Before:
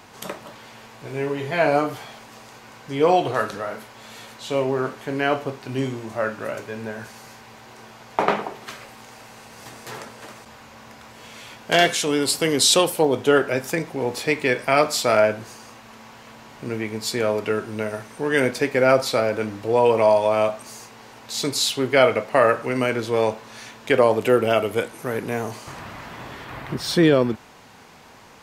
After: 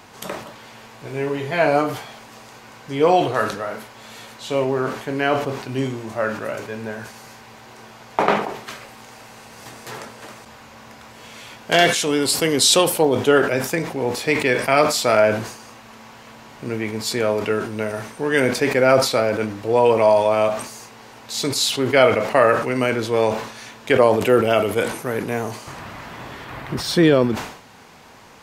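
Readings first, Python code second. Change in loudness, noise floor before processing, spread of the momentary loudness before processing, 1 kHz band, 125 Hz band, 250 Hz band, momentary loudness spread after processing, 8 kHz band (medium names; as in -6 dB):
+2.0 dB, -45 dBFS, 20 LU, +2.0 dB, +2.5 dB, +2.5 dB, 20 LU, +2.0 dB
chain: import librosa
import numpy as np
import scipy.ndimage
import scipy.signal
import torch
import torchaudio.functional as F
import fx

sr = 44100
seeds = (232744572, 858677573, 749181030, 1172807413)

y = fx.sustainer(x, sr, db_per_s=86.0)
y = y * librosa.db_to_amplitude(1.5)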